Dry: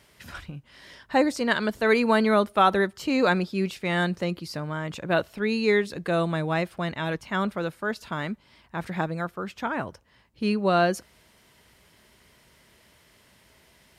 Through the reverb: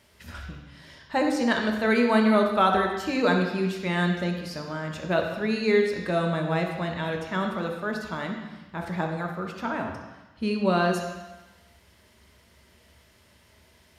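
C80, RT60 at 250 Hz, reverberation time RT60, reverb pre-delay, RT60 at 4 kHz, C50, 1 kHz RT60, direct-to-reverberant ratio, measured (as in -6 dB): 6.0 dB, 1.1 s, 1.1 s, 3 ms, 1.2 s, 4.5 dB, 1.1 s, 2.0 dB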